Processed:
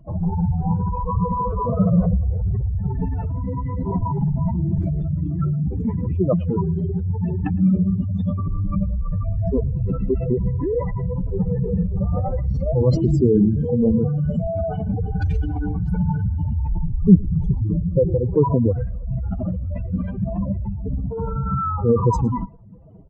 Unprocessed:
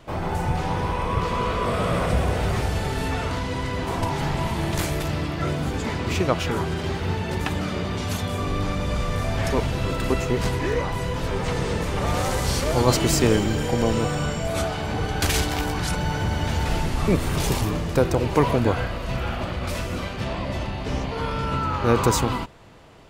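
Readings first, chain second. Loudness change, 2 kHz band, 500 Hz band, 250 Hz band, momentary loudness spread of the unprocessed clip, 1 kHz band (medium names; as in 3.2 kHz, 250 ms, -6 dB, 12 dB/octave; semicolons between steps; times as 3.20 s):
+2.5 dB, under -15 dB, +0.5 dB, +5.5 dB, 7 LU, -3.5 dB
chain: spectral contrast enhancement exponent 3.6; peaking EQ 190 Hz +12 dB 0.38 oct; echo from a far wall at 19 m, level -25 dB; trim +2 dB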